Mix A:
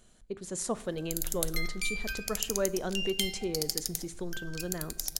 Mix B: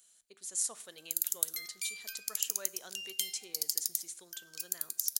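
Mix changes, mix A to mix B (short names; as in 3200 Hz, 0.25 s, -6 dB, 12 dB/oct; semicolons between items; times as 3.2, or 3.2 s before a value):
speech +3.5 dB; master: add differentiator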